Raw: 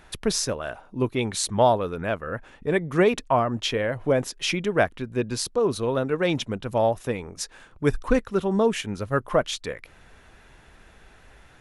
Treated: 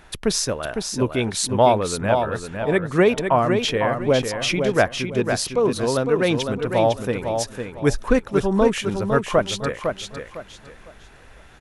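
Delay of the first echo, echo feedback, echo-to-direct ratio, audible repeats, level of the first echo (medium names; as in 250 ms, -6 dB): 505 ms, 28%, -5.5 dB, 3, -6.0 dB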